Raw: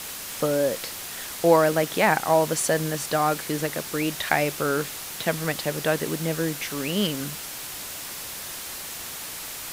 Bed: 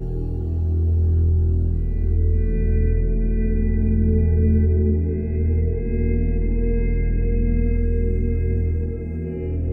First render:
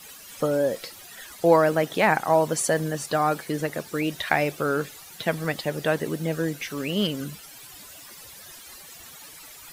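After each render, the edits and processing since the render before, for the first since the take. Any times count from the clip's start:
broadband denoise 14 dB, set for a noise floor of −36 dBFS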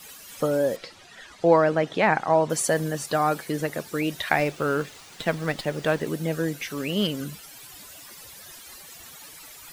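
0:00.76–0:02.50: high-frequency loss of the air 100 metres
0:04.39–0:06.07: windowed peak hold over 3 samples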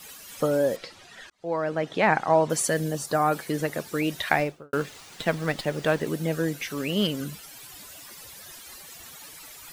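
0:01.30–0:02.10: fade in
0:02.67–0:03.32: parametric band 680 Hz → 5,600 Hz −10 dB 0.75 octaves
0:04.31–0:04.73: fade out and dull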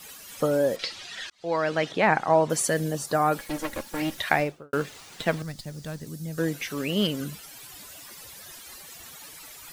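0:00.79–0:01.92: parametric band 4,000 Hz +12 dB 2.4 octaves
0:03.39–0:04.18: lower of the sound and its delayed copy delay 3.6 ms
0:05.42–0:06.38: drawn EQ curve 110 Hz 0 dB, 250 Hz −9 dB, 380 Hz −17 dB, 2,900 Hz −16 dB, 4,800 Hz −3 dB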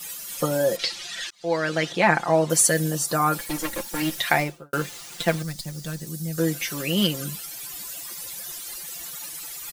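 high-shelf EQ 4,600 Hz +9.5 dB
comb filter 5.8 ms, depth 68%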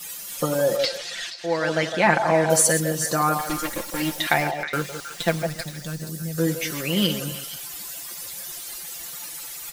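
delay that plays each chunk backwards 122 ms, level −10 dB
echo through a band-pass that steps 158 ms, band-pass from 680 Hz, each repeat 1.4 octaves, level −5 dB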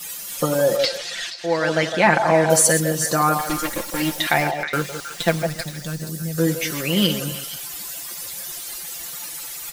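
level +3 dB
brickwall limiter −2 dBFS, peak gain reduction 3 dB

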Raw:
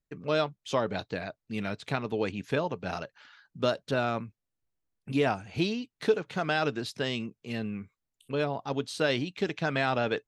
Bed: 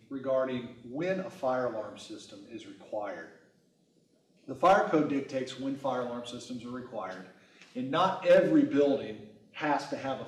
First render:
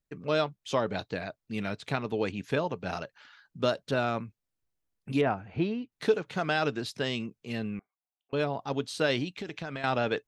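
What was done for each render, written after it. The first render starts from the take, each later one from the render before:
0:05.21–0:05.92: low-pass filter 1,900 Hz
0:07.79–0:08.33: four-pole ladder band-pass 780 Hz, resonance 80%
0:09.32–0:09.84: downward compressor, threshold −33 dBFS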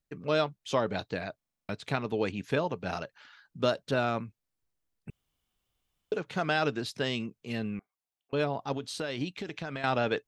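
0:01.37: stutter in place 0.04 s, 8 plays
0:05.10–0:06.12: fill with room tone
0:08.76–0:09.21: downward compressor, threshold −30 dBFS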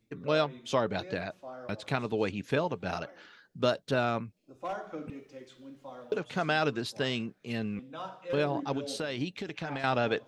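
mix in bed −14 dB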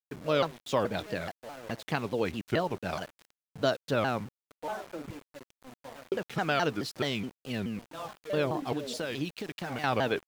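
centre clipping without the shift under −44 dBFS
pitch modulation by a square or saw wave saw down 4.7 Hz, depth 250 cents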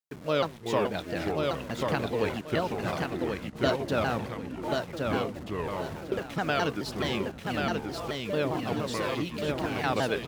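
repeating echo 1,085 ms, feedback 27%, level −3.5 dB
delay with pitch and tempo change per echo 283 ms, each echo −5 semitones, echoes 3, each echo −6 dB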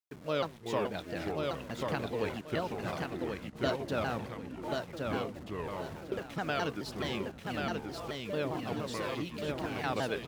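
level −5.5 dB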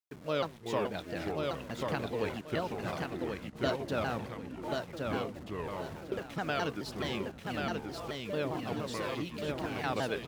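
no processing that can be heard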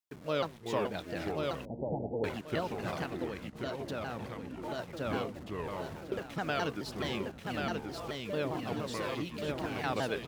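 0:01.65–0:02.24: Butterworth low-pass 870 Hz 96 dB per octave
0:03.25–0:04.79: downward compressor 3 to 1, threshold −34 dBFS

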